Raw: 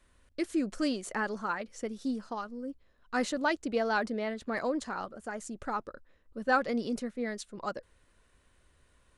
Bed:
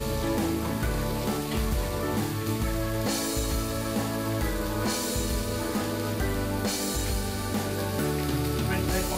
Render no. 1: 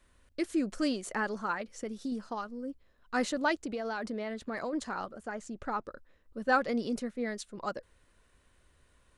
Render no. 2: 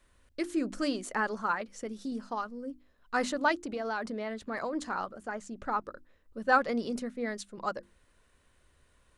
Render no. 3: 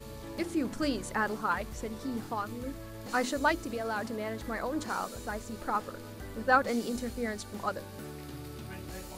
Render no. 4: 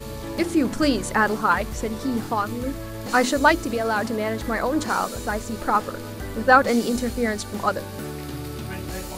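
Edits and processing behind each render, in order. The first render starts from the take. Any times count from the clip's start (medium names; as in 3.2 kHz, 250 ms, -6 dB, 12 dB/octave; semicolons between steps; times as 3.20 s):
1.72–2.12 s: compression, threshold -31 dBFS; 3.63–4.73 s: compression 10:1, threshold -31 dBFS; 5.23–5.84 s: distance through air 66 m
hum notches 50/100/150/200/250/300/350 Hz; dynamic bell 1.1 kHz, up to +4 dB, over -43 dBFS, Q 1.2
add bed -15.5 dB
trim +10.5 dB; peak limiter -2 dBFS, peak gain reduction 2 dB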